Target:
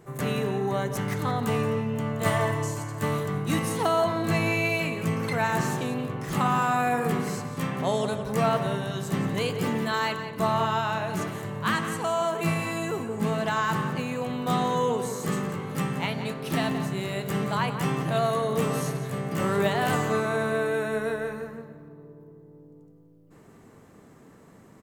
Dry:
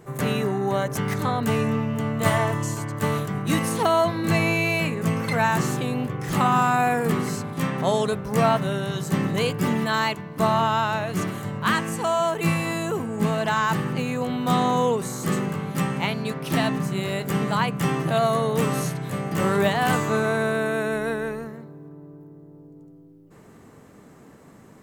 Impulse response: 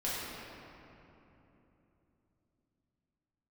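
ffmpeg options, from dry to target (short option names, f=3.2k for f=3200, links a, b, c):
-filter_complex "[0:a]asplit=2[a][b];[b]adelay=174.9,volume=-10dB,highshelf=f=4k:g=-3.94[c];[a][c]amix=inputs=2:normalize=0,asplit=2[d][e];[1:a]atrim=start_sample=2205,asetrate=74970,aresample=44100[f];[e][f]afir=irnorm=-1:irlink=0,volume=-12dB[g];[d][g]amix=inputs=2:normalize=0,volume=-5dB"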